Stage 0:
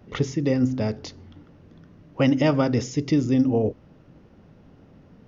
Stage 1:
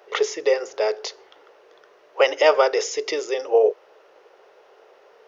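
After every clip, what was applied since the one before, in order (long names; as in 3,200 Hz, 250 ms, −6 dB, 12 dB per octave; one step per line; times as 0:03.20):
elliptic high-pass filter 410 Hz, stop band 40 dB
level +8.5 dB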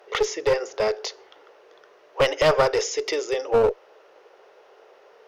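asymmetric clip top −18.5 dBFS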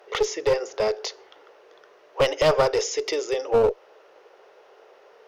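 dynamic equaliser 1,700 Hz, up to −4 dB, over −35 dBFS, Q 1.2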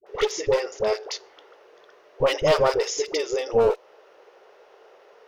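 all-pass dispersion highs, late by 67 ms, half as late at 700 Hz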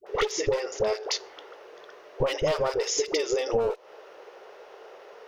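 downward compressor 12 to 1, threshold −27 dBFS, peak gain reduction 13.5 dB
level +5 dB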